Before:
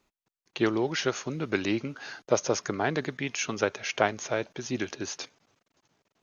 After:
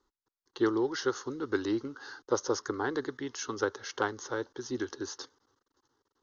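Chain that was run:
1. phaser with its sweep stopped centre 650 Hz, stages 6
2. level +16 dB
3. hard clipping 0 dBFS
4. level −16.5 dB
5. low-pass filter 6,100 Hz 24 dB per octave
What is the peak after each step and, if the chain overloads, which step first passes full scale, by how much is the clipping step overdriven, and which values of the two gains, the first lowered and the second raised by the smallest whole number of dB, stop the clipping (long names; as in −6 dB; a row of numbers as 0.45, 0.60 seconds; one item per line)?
−12.0, +4.0, 0.0, −16.5, −16.0 dBFS
step 2, 4.0 dB
step 2 +12 dB, step 4 −12.5 dB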